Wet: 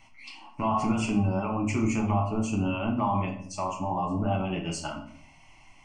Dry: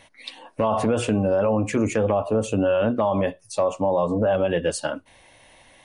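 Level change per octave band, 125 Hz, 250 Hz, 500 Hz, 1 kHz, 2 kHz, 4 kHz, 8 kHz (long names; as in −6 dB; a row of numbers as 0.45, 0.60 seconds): −0.5, −2.5, −13.5, −2.0, −5.0, −4.5, −5.0 decibels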